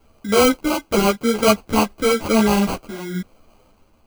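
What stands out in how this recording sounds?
phasing stages 8, 0.94 Hz, lowest notch 510–3400 Hz; aliases and images of a low sample rate 1.8 kHz, jitter 0%; random-step tremolo; a shimmering, thickened sound

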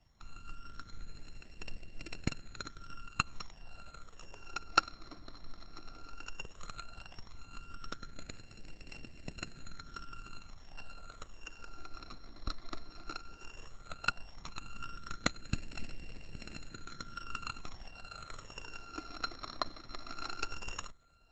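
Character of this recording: a buzz of ramps at a fixed pitch in blocks of 32 samples; phasing stages 12, 0.14 Hz, lowest notch 150–1200 Hz; Opus

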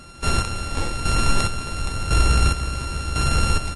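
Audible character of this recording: a buzz of ramps at a fixed pitch in blocks of 32 samples; chopped level 0.95 Hz, depth 60%, duty 40%; MP3

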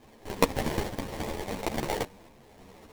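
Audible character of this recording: a quantiser's noise floor 10-bit, dither none; random-step tremolo; aliases and images of a low sample rate 1.4 kHz, jitter 20%; a shimmering, thickened sound

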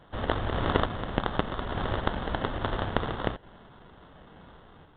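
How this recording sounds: random-step tremolo; aliases and images of a low sample rate 2.4 kHz, jitter 0%; µ-law

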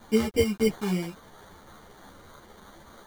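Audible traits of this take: a quantiser's noise floor 8-bit, dither none; phasing stages 6, 3.3 Hz, lowest notch 540–1100 Hz; aliases and images of a low sample rate 2.6 kHz, jitter 0%; a shimmering, thickened sound

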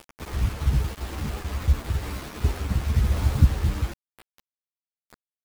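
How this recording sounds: tremolo saw down 0.99 Hz, depth 35%; a quantiser's noise floor 6-bit, dither none; a shimmering, thickened sound

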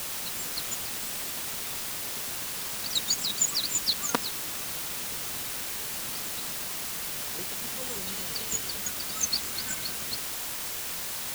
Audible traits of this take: tremolo saw down 8.8 Hz, depth 70%; a quantiser's noise floor 6-bit, dither triangular

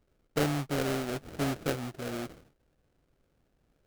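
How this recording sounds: aliases and images of a low sample rate 1 kHz, jitter 20%

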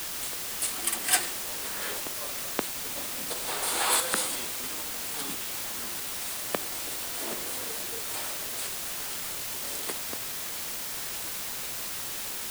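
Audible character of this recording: tremolo saw up 1.5 Hz, depth 55%; a quantiser's noise floor 6-bit, dither triangular

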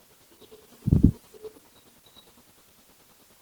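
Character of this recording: chopped level 9.7 Hz, depth 60%, duty 35%; a quantiser's noise floor 10-bit, dither triangular; Opus

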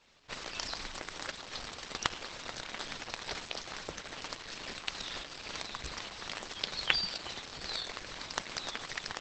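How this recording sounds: tremolo saw up 2.3 Hz, depth 30%; Opus

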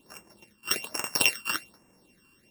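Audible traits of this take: a buzz of ramps at a fixed pitch in blocks of 16 samples; phasing stages 12, 1.2 Hz, lowest notch 640–4100 Hz

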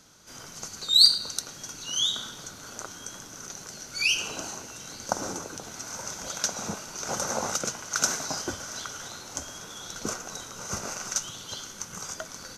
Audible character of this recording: noise floor -45 dBFS; spectral tilt -2.5 dB/octave

